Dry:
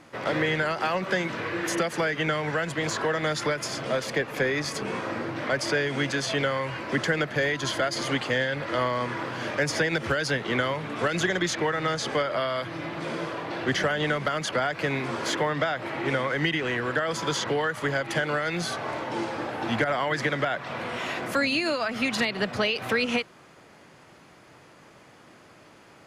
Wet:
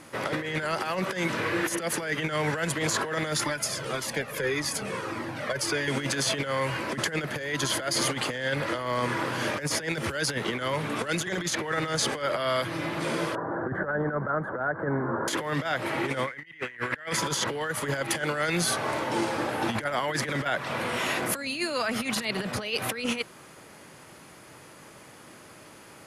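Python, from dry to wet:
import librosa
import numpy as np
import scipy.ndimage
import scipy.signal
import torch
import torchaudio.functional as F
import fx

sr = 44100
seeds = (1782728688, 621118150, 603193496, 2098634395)

y = fx.comb_cascade(x, sr, direction='falling', hz=1.7, at=(3.44, 5.88))
y = fx.ellip_lowpass(y, sr, hz=1600.0, order=4, stop_db=40, at=(13.35, 15.28))
y = fx.peak_eq(y, sr, hz=2000.0, db=14.0, octaves=0.77, at=(16.27, 17.19))
y = fx.peak_eq(y, sr, hz=11000.0, db=14.0, octaves=0.87)
y = fx.notch(y, sr, hz=710.0, q=18.0)
y = fx.over_compress(y, sr, threshold_db=-28.0, ratio=-0.5)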